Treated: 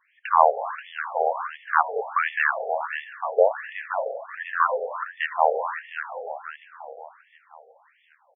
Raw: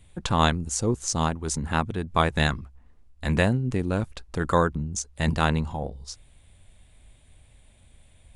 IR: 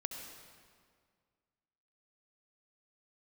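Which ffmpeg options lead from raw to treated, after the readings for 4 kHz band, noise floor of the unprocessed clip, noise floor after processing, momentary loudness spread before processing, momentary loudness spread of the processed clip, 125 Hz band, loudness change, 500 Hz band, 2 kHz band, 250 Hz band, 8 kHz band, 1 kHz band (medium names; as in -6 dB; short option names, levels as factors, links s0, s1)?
-12.0 dB, -56 dBFS, -63 dBFS, 11 LU, 15 LU, under -40 dB, +1.0 dB, +4.5 dB, +4.5 dB, under -30 dB, under -40 dB, +6.0 dB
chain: -filter_complex "[0:a]aecho=1:1:530|1060|1590|2120|2650:0.376|0.169|0.0761|0.0342|0.0154,asplit=2[s0][s1];[1:a]atrim=start_sample=2205,lowpass=2100[s2];[s1][s2]afir=irnorm=-1:irlink=0,volume=1.06[s3];[s0][s3]amix=inputs=2:normalize=0,afftfilt=real='re*between(b*sr/1024,570*pow(2500/570,0.5+0.5*sin(2*PI*1.4*pts/sr))/1.41,570*pow(2500/570,0.5+0.5*sin(2*PI*1.4*pts/sr))*1.41)':imag='im*between(b*sr/1024,570*pow(2500/570,0.5+0.5*sin(2*PI*1.4*pts/sr))/1.41,570*pow(2500/570,0.5+0.5*sin(2*PI*1.4*pts/sr))*1.41)':win_size=1024:overlap=0.75,volume=1.68"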